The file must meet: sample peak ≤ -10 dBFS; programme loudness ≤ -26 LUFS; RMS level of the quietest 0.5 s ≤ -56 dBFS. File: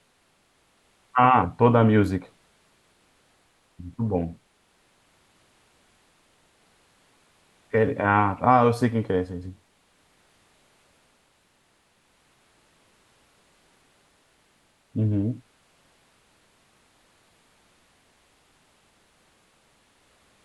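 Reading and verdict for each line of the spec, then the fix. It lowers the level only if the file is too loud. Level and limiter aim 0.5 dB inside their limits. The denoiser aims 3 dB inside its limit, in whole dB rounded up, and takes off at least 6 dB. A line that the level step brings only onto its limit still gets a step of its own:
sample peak -4.5 dBFS: fail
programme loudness -22.5 LUFS: fail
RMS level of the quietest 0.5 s -65 dBFS: OK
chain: gain -4 dB; limiter -10.5 dBFS

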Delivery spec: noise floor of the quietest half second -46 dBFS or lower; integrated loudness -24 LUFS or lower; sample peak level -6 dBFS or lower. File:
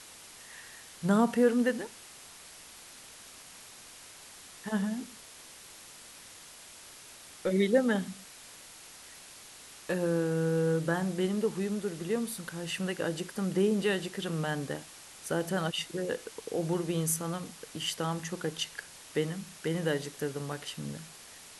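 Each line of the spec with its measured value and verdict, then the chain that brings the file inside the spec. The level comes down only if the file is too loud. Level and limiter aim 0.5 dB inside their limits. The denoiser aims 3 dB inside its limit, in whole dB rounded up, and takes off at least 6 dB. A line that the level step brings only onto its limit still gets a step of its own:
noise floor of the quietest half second -51 dBFS: OK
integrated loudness -31.5 LUFS: OK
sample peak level -13.0 dBFS: OK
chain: none

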